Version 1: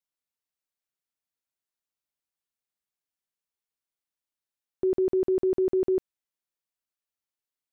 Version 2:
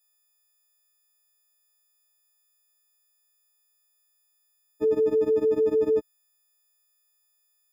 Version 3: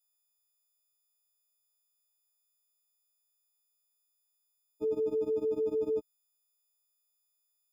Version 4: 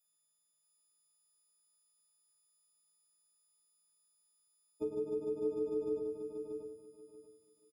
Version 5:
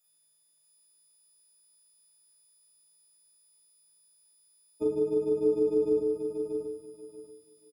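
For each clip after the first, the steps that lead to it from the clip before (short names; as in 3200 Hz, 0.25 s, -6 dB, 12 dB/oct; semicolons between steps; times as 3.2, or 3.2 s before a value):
frequency quantiser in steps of 6 st; HPF 46 Hz; in parallel at -2.5 dB: limiter -26 dBFS, peak gain reduction 7.5 dB
elliptic band-stop 1200–2600 Hz; gain -8 dB
compressor, threshold -36 dBFS, peak gain reduction 8 dB; on a send: feedback echo 0.634 s, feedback 21%, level -6 dB; on the sum: shoebox room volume 71 m³, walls mixed, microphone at 0.5 m
doubler 39 ms -2 dB; gain +6 dB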